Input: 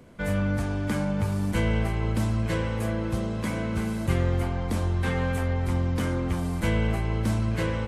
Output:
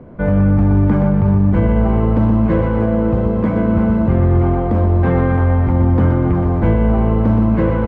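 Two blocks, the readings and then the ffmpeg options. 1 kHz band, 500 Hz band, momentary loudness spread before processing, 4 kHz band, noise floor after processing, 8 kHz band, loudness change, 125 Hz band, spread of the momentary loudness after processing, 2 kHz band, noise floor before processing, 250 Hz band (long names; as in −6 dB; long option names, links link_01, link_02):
+11.0 dB, +12.5 dB, 3 LU, can't be measured, −17 dBFS, below −20 dB, +12.5 dB, +12.0 dB, 3 LU, +3.0 dB, −30 dBFS, +14.0 dB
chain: -af "lowpass=1000,aecho=1:1:123|246|369|492|615|738|861:0.501|0.271|0.146|0.0789|0.0426|0.023|0.0124,alimiter=level_in=17.5dB:limit=-1dB:release=50:level=0:latency=1,volume=-4.5dB"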